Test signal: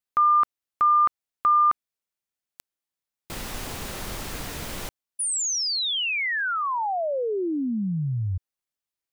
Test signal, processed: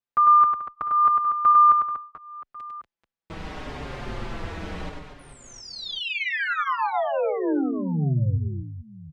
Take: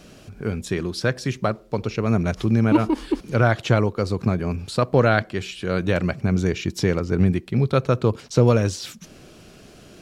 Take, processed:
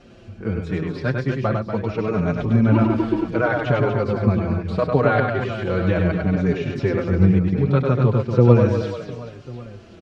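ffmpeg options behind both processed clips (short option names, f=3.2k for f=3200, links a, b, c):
-filter_complex "[0:a]acrossover=split=4000[a][b];[b]acompressor=threshold=-42dB:ratio=4:attack=1:release=60[c];[a][c]amix=inputs=2:normalize=0,lowpass=6.2k,highshelf=f=3.5k:g=-11.5,asplit=2[d][e];[e]aecho=0:1:100|240|436|710.4|1095:0.631|0.398|0.251|0.158|0.1[f];[d][f]amix=inputs=2:normalize=0,asplit=2[g][h];[h]adelay=5.3,afreqshift=-0.73[i];[g][i]amix=inputs=2:normalize=1,volume=3dB"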